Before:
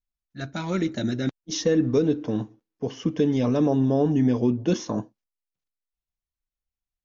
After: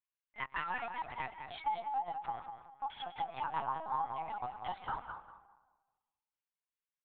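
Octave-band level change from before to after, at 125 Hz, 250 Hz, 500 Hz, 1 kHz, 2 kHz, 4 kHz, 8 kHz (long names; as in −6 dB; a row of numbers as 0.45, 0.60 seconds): −30.0 dB, −36.0 dB, −24.0 dB, +3.5 dB, −3.5 dB, −13.5 dB, can't be measured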